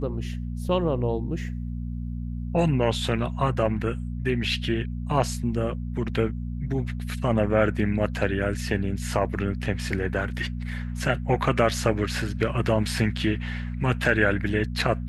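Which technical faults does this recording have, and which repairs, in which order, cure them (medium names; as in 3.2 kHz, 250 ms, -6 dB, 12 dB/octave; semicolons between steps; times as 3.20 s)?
hum 60 Hz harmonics 4 -31 dBFS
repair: de-hum 60 Hz, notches 4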